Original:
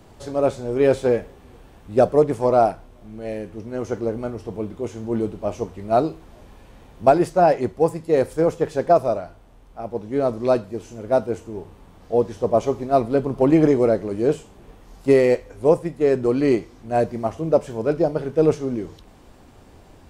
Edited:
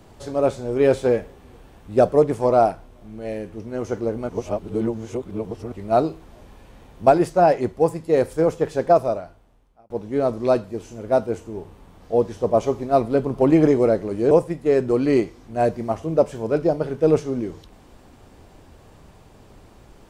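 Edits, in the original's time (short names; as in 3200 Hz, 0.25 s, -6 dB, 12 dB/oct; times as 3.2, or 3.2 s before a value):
4.29–5.72 reverse
8.98–9.9 fade out
14.31–15.66 cut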